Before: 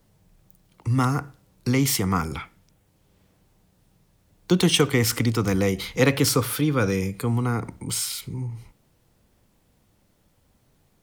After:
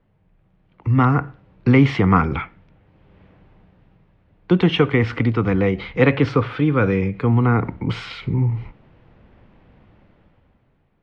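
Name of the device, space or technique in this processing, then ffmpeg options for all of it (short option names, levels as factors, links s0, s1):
action camera in a waterproof case: -af "lowpass=f=2700:w=0.5412,lowpass=f=2700:w=1.3066,dynaudnorm=f=140:g=13:m=5.01,volume=0.891" -ar 44100 -c:a aac -b:a 64k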